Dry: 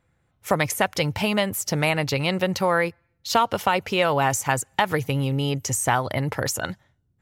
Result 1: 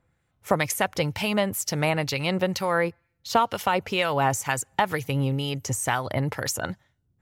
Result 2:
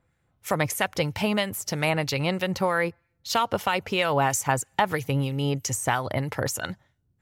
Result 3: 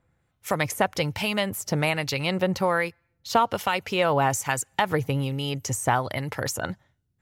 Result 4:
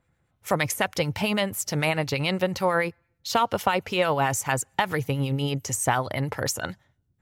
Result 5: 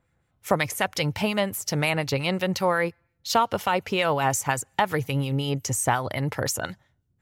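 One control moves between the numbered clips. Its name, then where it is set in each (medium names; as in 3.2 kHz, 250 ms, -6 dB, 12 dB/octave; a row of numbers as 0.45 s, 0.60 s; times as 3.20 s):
harmonic tremolo, rate: 2.1 Hz, 3.1 Hz, 1.2 Hz, 9 Hz, 5.6 Hz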